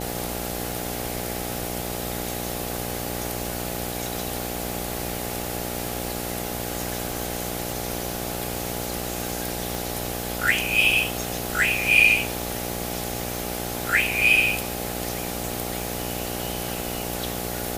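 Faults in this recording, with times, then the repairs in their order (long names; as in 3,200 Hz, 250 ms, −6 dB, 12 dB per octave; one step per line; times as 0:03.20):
mains buzz 60 Hz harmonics 14 −32 dBFS
surface crackle 54 per second −33 dBFS
0:09.75: click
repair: click removal
hum removal 60 Hz, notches 14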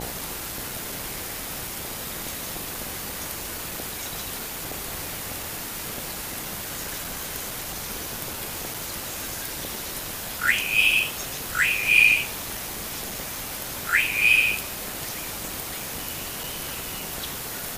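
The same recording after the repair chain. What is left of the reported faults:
none of them is left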